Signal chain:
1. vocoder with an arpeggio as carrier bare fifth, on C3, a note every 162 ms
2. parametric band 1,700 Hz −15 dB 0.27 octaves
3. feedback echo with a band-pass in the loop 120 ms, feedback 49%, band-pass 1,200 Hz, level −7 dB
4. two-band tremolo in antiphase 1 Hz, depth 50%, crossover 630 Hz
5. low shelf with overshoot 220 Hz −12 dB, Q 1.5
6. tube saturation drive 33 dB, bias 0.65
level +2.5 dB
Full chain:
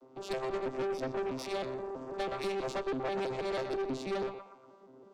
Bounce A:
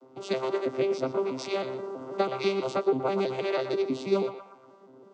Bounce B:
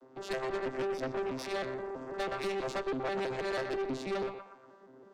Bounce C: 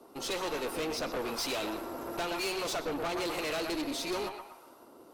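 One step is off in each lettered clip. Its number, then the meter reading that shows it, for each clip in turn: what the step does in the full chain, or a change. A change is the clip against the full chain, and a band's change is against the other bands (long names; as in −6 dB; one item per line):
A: 6, change in crest factor +8.0 dB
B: 2, 2 kHz band +3.5 dB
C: 1, 8 kHz band +11.0 dB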